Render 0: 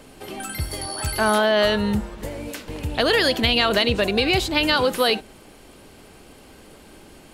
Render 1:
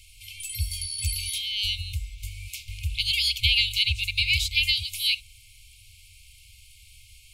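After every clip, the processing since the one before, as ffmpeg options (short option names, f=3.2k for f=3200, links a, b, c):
-af "afftfilt=real='re*(1-between(b*sr/4096,110,2100))':imag='im*(1-between(b*sr/4096,110,2100))':win_size=4096:overlap=0.75"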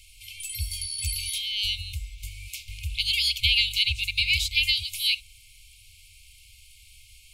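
-af "equalizer=f=130:t=o:w=1.6:g=-6"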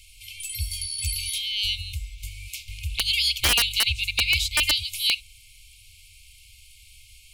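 -af "aeval=exprs='(mod(3.55*val(0)+1,2)-1)/3.55':c=same,volume=1.5dB"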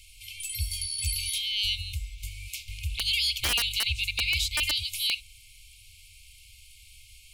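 -af "alimiter=limit=-15dB:level=0:latency=1:release=14,volume=-1.5dB"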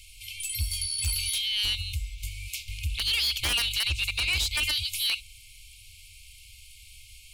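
-af "aeval=exprs='0.158*sin(PI/2*1.41*val(0)/0.158)':c=same,volume=-4.5dB"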